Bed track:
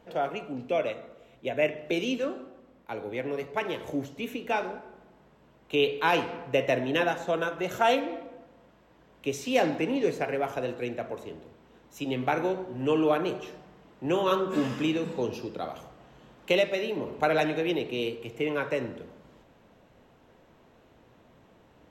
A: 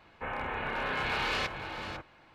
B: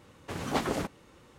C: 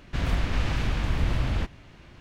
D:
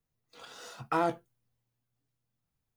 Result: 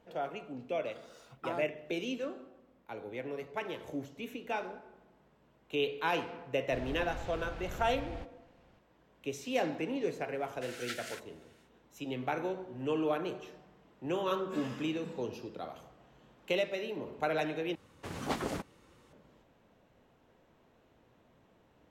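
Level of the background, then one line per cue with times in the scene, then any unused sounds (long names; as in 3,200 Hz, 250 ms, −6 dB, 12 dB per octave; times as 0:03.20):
bed track −7.5 dB
0:00.52: mix in D −11.5 dB
0:06.59: mix in C −18 dB + hollow resonant body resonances 510/760 Hz, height 12 dB
0:10.33: mix in B −3.5 dB, fades 0.10 s + linear-phase brick-wall high-pass 1,300 Hz
0:17.75: overwrite with B −5 dB
not used: A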